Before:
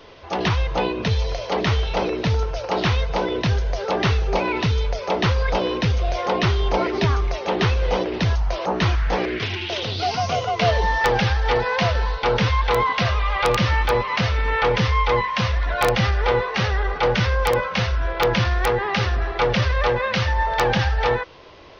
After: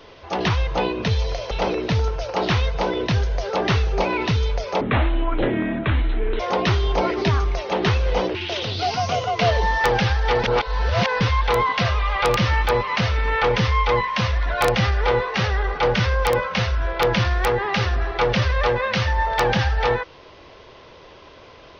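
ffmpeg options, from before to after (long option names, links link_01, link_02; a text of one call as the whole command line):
ffmpeg -i in.wav -filter_complex "[0:a]asplit=7[link_01][link_02][link_03][link_04][link_05][link_06][link_07];[link_01]atrim=end=1.512[link_08];[link_02]atrim=start=1.858:end=5.164[link_09];[link_03]atrim=start=5.16:end=6.16,asetpts=PTS-STARTPTS,asetrate=27783,aresample=44100[link_10];[link_04]atrim=start=6.156:end=8.112[link_11];[link_05]atrim=start=9.548:end=11.642[link_12];[link_06]atrim=start=11.638:end=12.412,asetpts=PTS-STARTPTS,areverse[link_13];[link_07]atrim=start=12.408[link_14];[link_08][link_09]acrossfade=duration=0.004:curve1=hsin:curve2=hsin[link_15];[link_15][link_10]acrossfade=duration=0.004:curve1=hsin:curve2=hsin[link_16];[link_16][link_11]acrossfade=duration=0.004:curve1=hsin:curve2=hsin[link_17];[link_17][link_12]acrossfade=duration=0.004:curve1=hsin:curve2=hsin[link_18];[link_18][link_13]acrossfade=duration=0.004:curve1=hsin:curve2=hsin[link_19];[link_19][link_14]acrossfade=duration=0.004:curve1=hsin:curve2=hsin" out.wav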